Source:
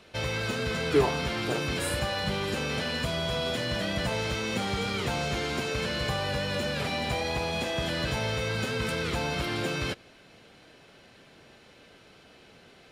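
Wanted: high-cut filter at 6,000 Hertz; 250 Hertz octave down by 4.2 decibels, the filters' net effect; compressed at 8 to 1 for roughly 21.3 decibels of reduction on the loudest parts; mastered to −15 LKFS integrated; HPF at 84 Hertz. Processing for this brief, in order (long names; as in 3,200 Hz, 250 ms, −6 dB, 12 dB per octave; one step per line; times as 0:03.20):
high-pass filter 84 Hz
low-pass filter 6,000 Hz
parametric band 250 Hz −6 dB
downward compressor 8 to 1, threshold −42 dBFS
level +29.5 dB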